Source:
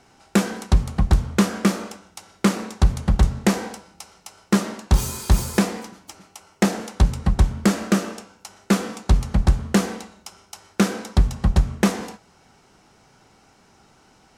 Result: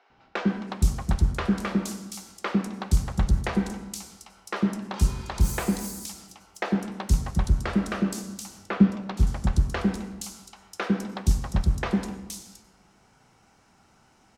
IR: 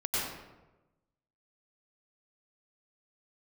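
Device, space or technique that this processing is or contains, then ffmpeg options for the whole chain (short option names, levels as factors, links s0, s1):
saturated reverb return: -filter_complex "[0:a]asettb=1/sr,asplit=3[s0][s1][s2];[s0]atrim=end=8.174[s3];[s1]atrim=start=8.17:end=8.8,asetpts=PTS-STARTPTS,afade=t=in:d=0.004:c=qsin,afade=t=out:st=0.626:d=0.004:c=qsin,bass=f=250:g=11,treble=f=4000:g=-11[s4];[s2]atrim=start=8.796[s5];[s3][s4]acrossfade=d=0.004:c1=hsin:c2=qsin[s6];[s6][s5]acrossfade=d=0.004:c1=qsin:c2=hsin,acrossover=split=420|4100[s7][s8][s9];[s7]adelay=100[s10];[s9]adelay=470[s11];[s10][s8][s11]amix=inputs=3:normalize=0,asplit=2[s12][s13];[1:a]atrim=start_sample=2205[s14];[s13][s14]afir=irnorm=-1:irlink=0,asoftclip=type=tanh:threshold=0.282,volume=0.133[s15];[s12][s15]amix=inputs=2:normalize=0,volume=0.531"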